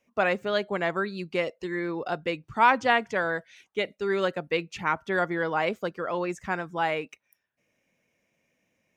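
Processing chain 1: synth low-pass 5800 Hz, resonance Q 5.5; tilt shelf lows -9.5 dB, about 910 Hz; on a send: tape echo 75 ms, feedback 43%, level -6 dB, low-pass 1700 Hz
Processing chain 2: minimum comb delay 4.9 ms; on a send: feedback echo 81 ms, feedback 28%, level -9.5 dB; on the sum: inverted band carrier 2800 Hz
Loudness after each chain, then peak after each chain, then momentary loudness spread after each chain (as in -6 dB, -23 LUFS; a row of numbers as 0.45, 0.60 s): -24.0, -27.0 LUFS; -1.5, -10.0 dBFS; 11, 8 LU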